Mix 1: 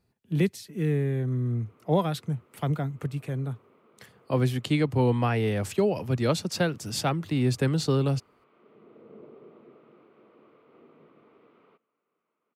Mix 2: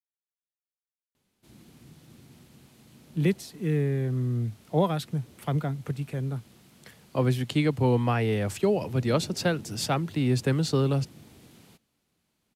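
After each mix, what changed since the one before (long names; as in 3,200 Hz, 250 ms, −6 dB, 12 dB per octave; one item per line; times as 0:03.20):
speech: entry +2.85 s
background: remove loudspeaker in its box 410–2,100 Hz, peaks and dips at 440 Hz +7 dB, 790 Hz −6 dB, 1,200 Hz +9 dB, 1,700 Hz −10 dB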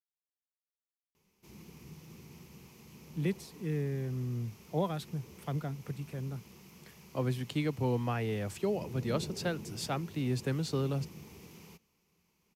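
speech −8.0 dB
background: add EQ curve with evenly spaced ripples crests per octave 0.79, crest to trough 9 dB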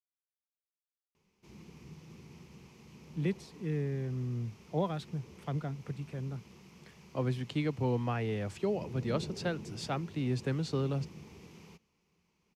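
master: add high-frequency loss of the air 62 metres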